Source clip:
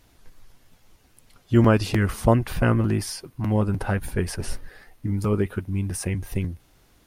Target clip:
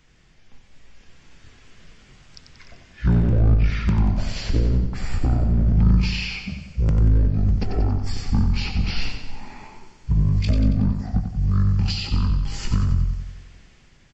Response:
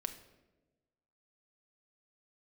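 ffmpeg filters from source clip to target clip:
-filter_complex "[0:a]acrossover=split=310[link_01][link_02];[link_01]asoftclip=type=hard:threshold=-25.5dB[link_03];[link_02]acompressor=threshold=-37dB:ratio=5[link_04];[link_03][link_04]amix=inputs=2:normalize=0,equalizer=frequency=540:width=0.66:gain=10.5,dynaudnorm=framelen=150:gausssize=7:maxgain=8.5dB,firequalizer=gain_entry='entry(170,0);entry(560,-11);entry(990,-8);entry(1700,-7);entry(3800,3);entry(14000,-3)':delay=0.05:min_phase=1,asetrate=22050,aresample=44100,asplit=2[link_05][link_06];[link_06]aecho=0:1:92|184|276|368|460|552|644:0.447|0.241|0.13|0.0703|0.038|0.0205|0.0111[link_07];[link_05][link_07]amix=inputs=2:normalize=0"

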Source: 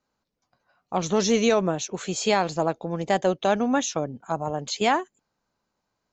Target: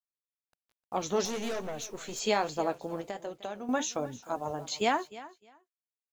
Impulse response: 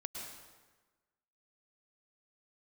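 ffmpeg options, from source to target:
-filter_complex "[0:a]flanger=delay=7:depth=5.7:regen=-58:speed=1.2:shape=triangular,asettb=1/sr,asplit=3[link_01][link_02][link_03];[link_01]atrim=end=1.254[link_04];[link_02]atrim=start=1.25:end=2.2,asetpts=PTS-STARTPTS,afade=type=in:duration=0.004:curve=qsin,afade=type=out:start_time=0.946:duration=0.004:curve=qsin,aeval=exprs='(tanh(31.6*val(0)+0.3)-tanh(0.3))/31.6':channel_layout=same[link_05];[link_03]atrim=start=2.196[link_06];[link_04][link_05]acrossfade=duration=0.004:curve1=hsin:curve2=qsin[link_07];[link_07][link_06]acrossfade=duration=0.004:curve1=qsin:curve2=hsin,acrusher=bits=9:mix=0:aa=0.000001,asettb=1/sr,asplit=3[link_08][link_09][link_10];[link_08]atrim=end=3.004[link_11];[link_09]atrim=start=3:end=3.69,asetpts=PTS-STARTPTS,afade=type=in:duration=0.004:curve=qsin,afade=type=out:start_time=0.686:duration=0.004:curve=qsin,acompressor=threshold=-34dB:ratio=6[link_12];[link_10]atrim=start=3.686[link_13];[link_11][link_12]acrossfade=duration=0.004:curve1=hsin:curve2=qsin[link_14];[link_14][link_13]acrossfade=duration=0.004:curve1=qsin:curve2=hsin,equalizer=frequency=170:width=4.2:gain=-9,aecho=1:1:305|610:0.133|0.024,volume=-1.5dB"

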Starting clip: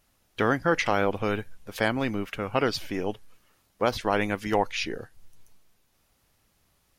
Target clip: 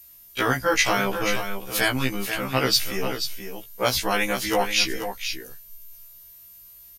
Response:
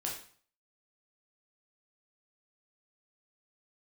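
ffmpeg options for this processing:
-filter_complex "[0:a]acrossover=split=100|1300|2500[link_01][link_02][link_03][link_04];[link_01]acontrast=78[link_05];[link_05][link_02][link_03][link_04]amix=inputs=4:normalize=0,crystalizer=i=6:c=0,aeval=exprs='val(0)+0.00708*sin(2*PI*13000*n/s)':channel_layout=same,aecho=1:1:485:0.376,afftfilt=real='re*1.73*eq(mod(b,3),0)':imag='im*1.73*eq(mod(b,3),0)':win_size=2048:overlap=0.75,volume=1.5dB"

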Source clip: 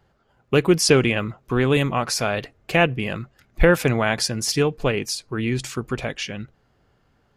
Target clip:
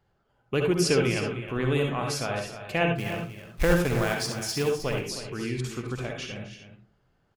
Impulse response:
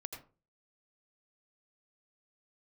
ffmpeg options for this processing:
-filter_complex "[0:a]asettb=1/sr,asplit=3[link_01][link_02][link_03];[link_01]atrim=end=2.984[link_04];[link_02]atrim=start=2.98:end=4.74,asetpts=PTS-STARTPTS,afade=type=in:duration=0.004:curve=qsin,afade=type=out:start_time=1.756:duration=0.004:curve=qsin,acrusher=bits=3:mode=log:mix=0:aa=0.000001[link_05];[link_03]atrim=start=4.736[link_06];[link_04][link_05]acrossfade=duration=0.004:curve1=hsin:curve2=qsin[link_07];[link_07][link_06]acrossfade=duration=0.004:curve1=qsin:curve2=hsin,aecho=1:1:262|312:0.158|0.266[link_08];[1:a]atrim=start_sample=2205,asetrate=57330,aresample=44100[link_09];[link_08][link_09]afir=irnorm=-1:irlink=0,volume=-2.5dB"

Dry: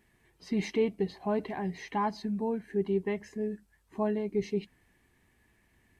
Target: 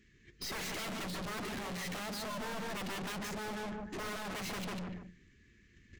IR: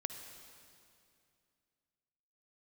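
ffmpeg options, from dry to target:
-filter_complex "[0:a]asuperstop=centerf=770:order=4:qfactor=0.69,equalizer=frequency=1200:width_type=o:width=2.6:gain=-2,bandreject=frequency=60:width_type=h:width=6,bandreject=frequency=120:width_type=h:width=6,bandreject=frequency=180:width_type=h:width=6,bandreject=frequency=240:width_type=h:width=6,bandreject=frequency=300:width_type=h:width=6,bandreject=frequency=360:width_type=h:width=6,aresample=16000,aeval=exprs='0.0944*sin(PI/2*8.91*val(0)/0.0944)':channel_layout=same,aresample=44100,agate=range=-21dB:threshold=-41dB:ratio=16:detection=peak,asplit=2[link_01][link_02];[link_02]adelay=146,lowpass=frequency=1500:poles=1,volume=-3dB,asplit=2[link_03][link_04];[link_04]adelay=146,lowpass=frequency=1500:poles=1,volume=0.22,asplit=2[link_05][link_06];[link_06]adelay=146,lowpass=frequency=1500:poles=1,volume=0.22[link_07];[link_01][link_03][link_05][link_07]amix=inputs=4:normalize=0,aeval=exprs='(tanh(141*val(0)+0.3)-tanh(0.3))/141':channel_layout=same,volume=3.5dB"

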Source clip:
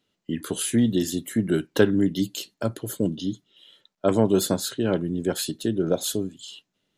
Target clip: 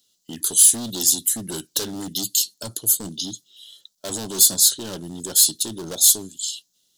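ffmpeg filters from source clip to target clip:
ffmpeg -i in.wav -af "volume=22.5dB,asoftclip=hard,volume=-22.5dB,aexciter=amount=7.1:drive=9.1:freq=3500,volume=-6dB" out.wav

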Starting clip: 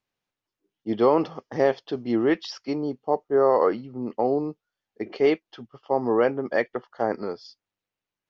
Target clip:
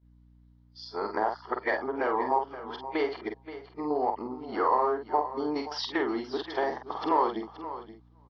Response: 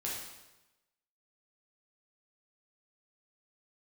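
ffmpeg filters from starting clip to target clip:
-filter_complex "[0:a]areverse,asplit=2[link_01][link_02];[link_02]aeval=exprs='clip(val(0),-1,0.168)':channel_layout=same,volume=-8dB[link_03];[link_01][link_03]amix=inputs=2:normalize=0,acompressor=threshold=-21dB:ratio=6,highpass=460,equalizer=frequency=530:width_type=q:width=4:gain=-10,equalizer=frequency=960:width_type=q:width=4:gain=8,equalizer=frequency=2600:width_type=q:width=4:gain=-10,lowpass=frequency=4900:width=0.5412,lowpass=frequency=4900:width=1.3066,asplit=2[link_04][link_05];[link_05]adelay=47,volume=-6dB[link_06];[link_04][link_06]amix=inputs=2:normalize=0,asplit=2[link_07][link_08];[link_08]adelay=513.1,volume=-27dB,highshelf=frequency=4000:gain=-11.5[link_09];[link_07][link_09]amix=inputs=2:normalize=0,aeval=exprs='val(0)+0.00141*(sin(2*PI*60*n/s)+sin(2*PI*2*60*n/s)/2+sin(2*PI*3*60*n/s)/3+sin(2*PI*4*60*n/s)/4+sin(2*PI*5*60*n/s)/5)':channel_layout=same,asplit=2[link_10][link_11];[link_11]aecho=0:1:526:0.211[link_12];[link_10][link_12]amix=inputs=2:normalize=0,agate=range=-12dB:threshold=-59dB:ratio=16:detection=peak,volume=1.5dB"

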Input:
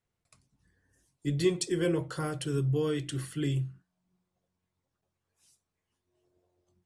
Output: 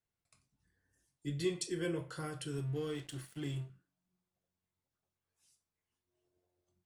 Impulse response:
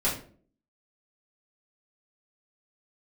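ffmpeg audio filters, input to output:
-filter_complex "[0:a]asplit=2[link_01][link_02];[link_02]highpass=1000[link_03];[1:a]atrim=start_sample=2205[link_04];[link_03][link_04]afir=irnorm=-1:irlink=0,volume=-12.5dB[link_05];[link_01][link_05]amix=inputs=2:normalize=0,asettb=1/sr,asplit=3[link_06][link_07][link_08];[link_06]atrim=end=2.534[link_09];[link_07]atrim=start=2.53:end=3.7,asetpts=PTS-STARTPTS,afade=type=in:duration=0.004:curve=qsin,afade=type=out:start_time=1.166:duration=0.004:curve=qsin,aeval=exprs='sgn(val(0))*max(abs(val(0))-0.00531,0)':channel_layout=same[link_10];[link_08]atrim=start=3.696[link_11];[link_09][link_10]acrossfade=duration=0.004:curve1=hsin:curve2=qsin[link_12];[link_12][link_11]acrossfade=duration=0.004:curve1=qsin:curve2=hsin,volume=-8.5dB"

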